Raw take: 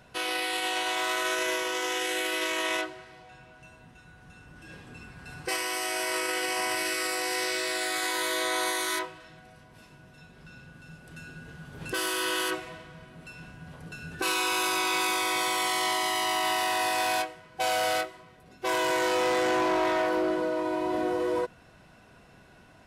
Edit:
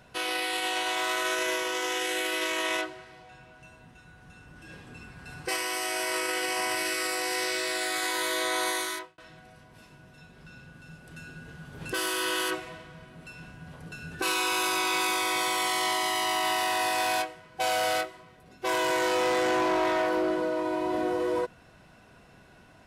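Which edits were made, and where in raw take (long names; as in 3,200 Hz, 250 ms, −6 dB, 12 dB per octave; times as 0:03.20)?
0:08.77–0:09.18: fade out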